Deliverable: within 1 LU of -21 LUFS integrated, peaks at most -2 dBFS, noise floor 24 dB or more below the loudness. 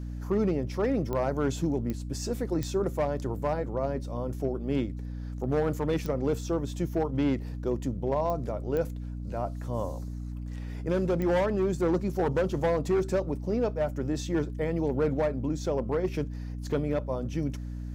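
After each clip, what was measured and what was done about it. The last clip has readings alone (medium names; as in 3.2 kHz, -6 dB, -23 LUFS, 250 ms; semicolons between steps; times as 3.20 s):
clicks found 7; hum 60 Hz; highest harmonic 300 Hz; hum level -34 dBFS; loudness -30.0 LUFS; peak level -16.0 dBFS; loudness target -21.0 LUFS
-> de-click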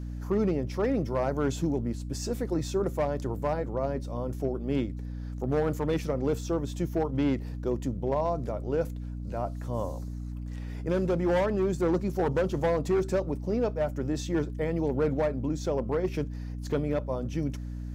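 clicks found 0; hum 60 Hz; highest harmonic 300 Hz; hum level -34 dBFS
-> hum notches 60/120/180/240/300 Hz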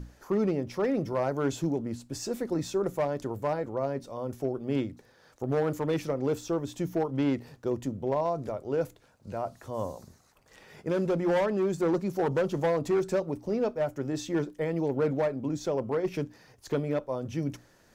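hum not found; loudness -30.5 LUFS; peak level -18.0 dBFS; loudness target -21.0 LUFS
-> trim +9.5 dB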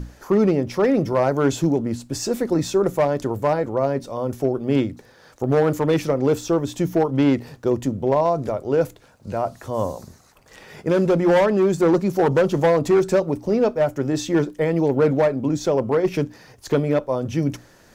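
loudness -21.0 LUFS; peak level -8.5 dBFS; noise floor -52 dBFS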